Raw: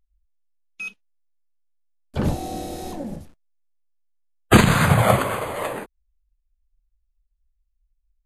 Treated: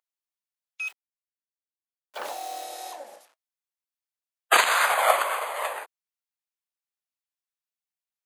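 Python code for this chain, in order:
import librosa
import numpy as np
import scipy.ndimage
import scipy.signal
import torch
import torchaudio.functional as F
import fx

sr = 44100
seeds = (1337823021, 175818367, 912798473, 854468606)

y = fx.delta_hold(x, sr, step_db=-42.0, at=(0.86, 2.63), fade=0.02)
y = scipy.signal.sosfilt(scipy.signal.butter(4, 640.0, 'highpass', fs=sr, output='sos'), y)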